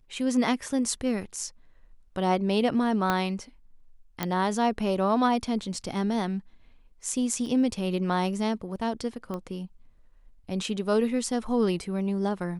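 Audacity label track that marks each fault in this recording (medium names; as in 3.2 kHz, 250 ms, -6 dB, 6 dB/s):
3.100000	3.100000	pop -11 dBFS
4.230000	4.230000	pop -12 dBFS
7.460000	7.460000	dropout 2.2 ms
9.340000	9.340000	pop -22 dBFS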